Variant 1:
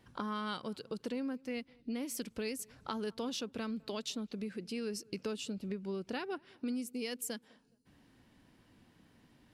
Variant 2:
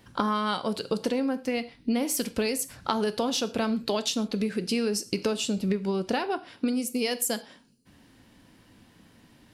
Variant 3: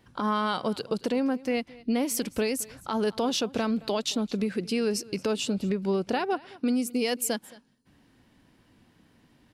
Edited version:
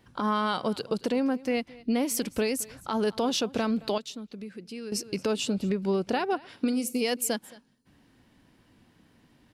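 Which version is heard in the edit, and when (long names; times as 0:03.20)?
3
0:03.98–0:04.92: punch in from 1
0:06.49–0:07.01: punch in from 2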